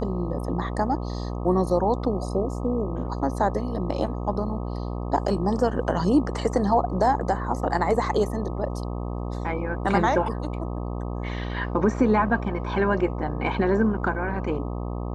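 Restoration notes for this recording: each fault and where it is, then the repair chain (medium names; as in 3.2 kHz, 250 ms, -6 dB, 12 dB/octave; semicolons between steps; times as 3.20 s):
buzz 60 Hz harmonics 21 -30 dBFS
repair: de-hum 60 Hz, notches 21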